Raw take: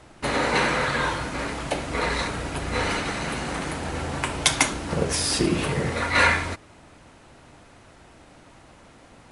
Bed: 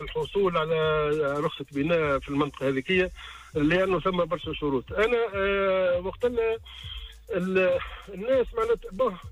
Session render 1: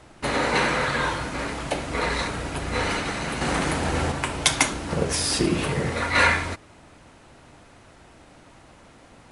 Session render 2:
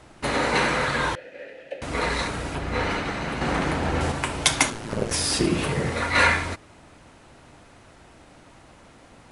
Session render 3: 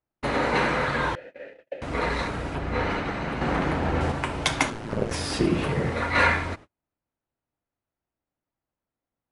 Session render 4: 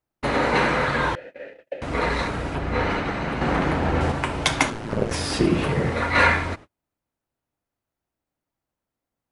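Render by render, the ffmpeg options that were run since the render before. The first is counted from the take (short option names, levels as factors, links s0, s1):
-filter_complex "[0:a]asettb=1/sr,asplit=3[s0][s1][s2];[s0]atrim=end=3.414[s3];[s1]atrim=start=3.41:end=4.12,asetpts=PTS-STARTPTS,afade=t=in:d=0.004:c=qsin,afade=t=out:st=0.706:d=0.004:c=qsin,acontrast=33[s4];[s2]atrim=start=4.116[s5];[s3][s4]acrossfade=d=0.004:c1=hsin:c2=qsin[s6];[s6][s5]acrossfade=d=0.004:c1=qsin:c2=hsin"
-filter_complex "[0:a]asettb=1/sr,asplit=3[s0][s1][s2];[s0]atrim=end=1.154[s3];[s1]atrim=start=1.15:end=1.82,asetpts=PTS-STARTPTS,afade=t=in:d=0.004:c=qsin,afade=t=out:st=0.666:d=0.004:c=qsin,asplit=3[s4][s5][s6];[s4]bandpass=f=530:t=q:w=8,volume=1[s7];[s5]bandpass=f=1840:t=q:w=8,volume=0.501[s8];[s6]bandpass=f=2480:t=q:w=8,volume=0.355[s9];[s7][s8][s9]amix=inputs=3:normalize=0[s10];[s2]atrim=start=1.816[s11];[s3][s10]acrossfade=d=0.004:c1=hsin:c2=qsin[s12];[s12][s11]acrossfade=d=0.004:c1=qsin:c2=hsin,asettb=1/sr,asplit=3[s13][s14][s15];[s13]atrim=end=2.554[s16];[s14]atrim=start=2.55:end=4.01,asetpts=PTS-STARTPTS,afade=t=in:d=0.004:c=qsin,afade=t=out:st=1.456:d=0.004:c=qsin,aemphasis=mode=reproduction:type=50fm[s17];[s15]atrim=start=4.006[s18];[s16][s17]acrossfade=d=0.004:c1=hsin:c2=qsin[s19];[s19][s18]acrossfade=d=0.004:c1=qsin:c2=hsin,asplit=3[s20][s21][s22];[s20]afade=t=out:st=4.7:d=0.02[s23];[s21]aeval=exprs='val(0)*sin(2*PI*55*n/s)':c=same,afade=t=in:st=4.7:d=0.02,afade=t=out:st=5.1:d=0.02[s24];[s22]afade=t=in:st=5.1:d=0.02[s25];[s23][s24][s25]amix=inputs=3:normalize=0"
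-af "lowpass=f=2300:p=1,agate=range=0.0112:threshold=0.00891:ratio=16:detection=peak"
-af "volume=1.41"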